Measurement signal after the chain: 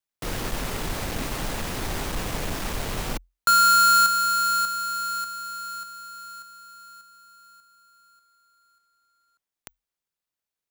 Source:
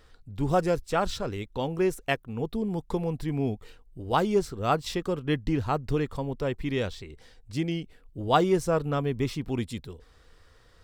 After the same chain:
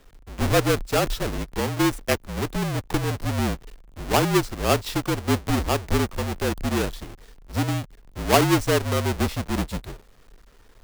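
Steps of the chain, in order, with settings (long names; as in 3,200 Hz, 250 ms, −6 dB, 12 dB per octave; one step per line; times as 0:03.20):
each half-wave held at its own peak
frequency shifter −44 Hz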